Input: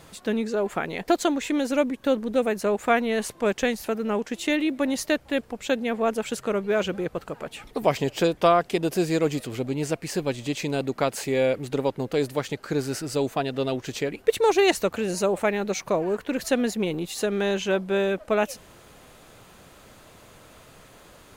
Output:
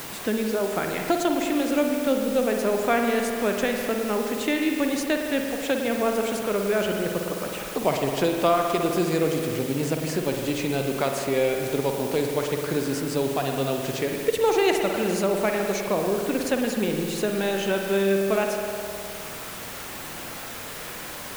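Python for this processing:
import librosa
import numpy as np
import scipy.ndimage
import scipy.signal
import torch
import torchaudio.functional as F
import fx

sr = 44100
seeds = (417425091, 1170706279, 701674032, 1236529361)

y = fx.dmg_noise_colour(x, sr, seeds[0], colour='white', level_db=-39.0)
y = fx.rev_spring(y, sr, rt60_s=2.0, pass_ms=(51,), chirp_ms=25, drr_db=2.5)
y = fx.band_squash(y, sr, depth_pct=40)
y = F.gain(torch.from_numpy(y), -1.5).numpy()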